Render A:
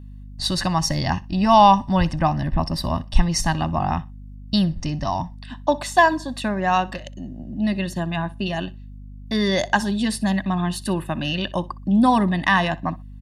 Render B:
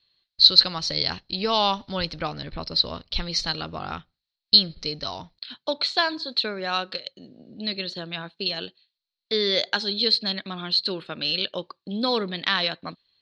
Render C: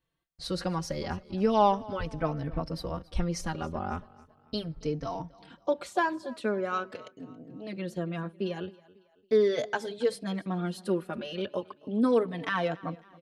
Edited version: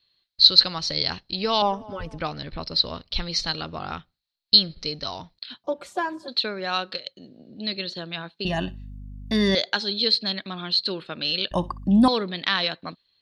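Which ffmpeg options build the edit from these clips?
-filter_complex "[2:a]asplit=2[a][b];[0:a]asplit=2[c][d];[1:a]asplit=5[e][f][g][h][i];[e]atrim=end=1.622[j];[a]atrim=start=1.618:end=2.182[k];[f]atrim=start=2.178:end=5.642[l];[b]atrim=start=5.638:end=6.282[m];[g]atrim=start=6.278:end=8.452[n];[c]atrim=start=8.448:end=9.552[o];[h]atrim=start=9.548:end=11.512[p];[d]atrim=start=11.508:end=12.082[q];[i]atrim=start=12.078[r];[j][k]acrossfade=d=0.004:c1=hsin:c2=hsin[s];[s][l]acrossfade=d=0.004:c1=hsin:c2=hsin[t];[t][m]acrossfade=d=0.004:c1=hsin:c2=hsin[u];[u][n]acrossfade=d=0.004:c1=hsin:c2=hsin[v];[v][o]acrossfade=d=0.004:c1=hsin:c2=hsin[w];[w][p]acrossfade=d=0.004:c1=hsin:c2=hsin[x];[x][q]acrossfade=d=0.004:c1=hsin:c2=hsin[y];[y][r]acrossfade=d=0.004:c1=hsin:c2=hsin"

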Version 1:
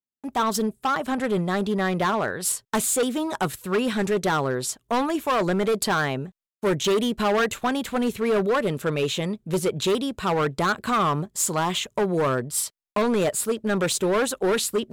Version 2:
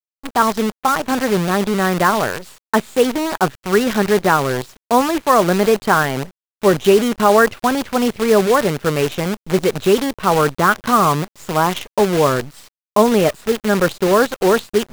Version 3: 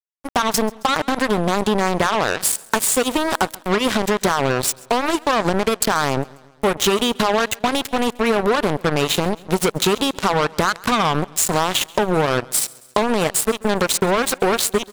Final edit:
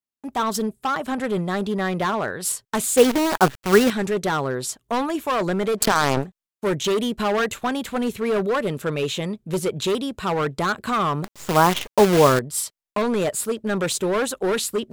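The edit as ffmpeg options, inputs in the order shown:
-filter_complex "[1:a]asplit=2[a][b];[0:a]asplit=4[c][d][e][f];[c]atrim=end=2.972[g];[a]atrim=start=2.968:end=3.902[h];[d]atrim=start=3.898:end=5.86[i];[2:a]atrim=start=5.76:end=6.27[j];[e]atrim=start=6.17:end=11.242[k];[b]atrim=start=11.238:end=12.392[l];[f]atrim=start=12.388[m];[g][h]acrossfade=d=0.004:c1=hsin:c2=hsin[n];[n][i]acrossfade=d=0.004:c1=hsin:c2=hsin[o];[o][j]acrossfade=d=0.1:c1=tri:c2=tri[p];[p][k]acrossfade=d=0.1:c1=tri:c2=tri[q];[q][l]acrossfade=d=0.004:c1=hsin:c2=hsin[r];[r][m]acrossfade=d=0.004:c1=hsin:c2=hsin"

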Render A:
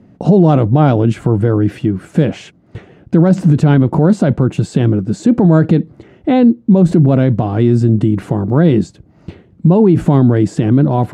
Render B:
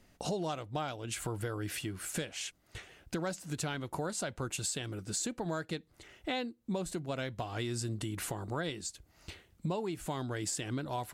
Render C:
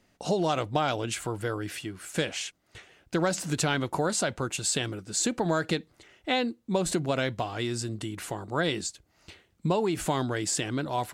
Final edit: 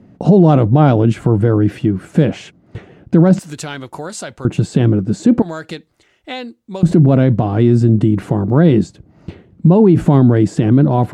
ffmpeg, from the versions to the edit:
-filter_complex "[2:a]asplit=2[a][b];[0:a]asplit=3[c][d][e];[c]atrim=end=3.392[f];[a]atrim=start=3.388:end=4.452[g];[d]atrim=start=4.448:end=5.422[h];[b]atrim=start=5.418:end=6.832[i];[e]atrim=start=6.828[j];[f][g]acrossfade=d=0.004:c1=hsin:c2=hsin[k];[k][h]acrossfade=d=0.004:c1=hsin:c2=hsin[l];[l][i]acrossfade=d=0.004:c1=hsin:c2=hsin[m];[m][j]acrossfade=d=0.004:c1=hsin:c2=hsin"

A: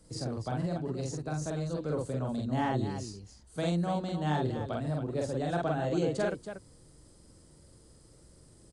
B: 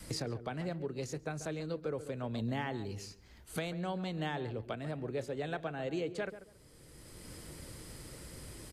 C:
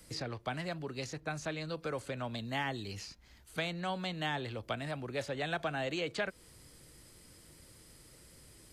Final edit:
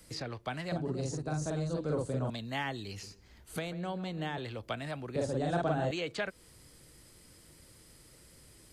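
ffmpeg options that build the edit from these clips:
-filter_complex "[0:a]asplit=2[a][b];[2:a]asplit=4[c][d][e][f];[c]atrim=end=0.722[g];[a]atrim=start=0.718:end=2.302[h];[d]atrim=start=2.298:end=3.032[i];[1:a]atrim=start=3.028:end=4.382[j];[e]atrim=start=4.378:end=5.162[k];[b]atrim=start=5.158:end=5.912[l];[f]atrim=start=5.908[m];[g][h]acrossfade=d=0.004:c1=hsin:c2=hsin[n];[n][i]acrossfade=d=0.004:c1=hsin:c2=hsin[o];[o][j]acrossfade=d=0.004:c1=hsin:c2=hsin[p];[p][k]acrossfade=d=0.004:c1=hsin:c2=hsin[q];[q][l]acrossfade=d=0.004:c1=hsin:c2=hsin[r];[r][m]acrossfade=d=0.004:c1=hsin:c2=hsin"

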